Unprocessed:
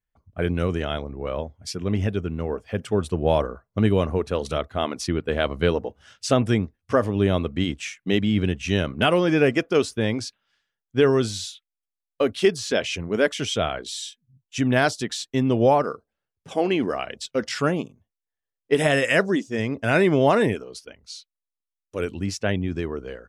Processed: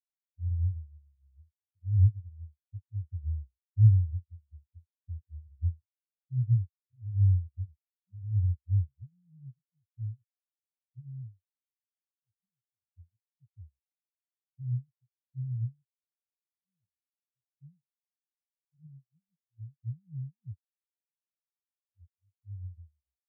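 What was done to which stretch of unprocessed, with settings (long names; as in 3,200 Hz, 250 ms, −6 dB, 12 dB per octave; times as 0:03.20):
0:22.07–0:22.72: fade in, from −21 dB
whole clip: inverse Chebyshev low-pass filter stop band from 570 Hz, stop band 70 dB; leveller curve on the samples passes 1; every bin expanded away from the loudest bin 4 to 1; level +7.5 dB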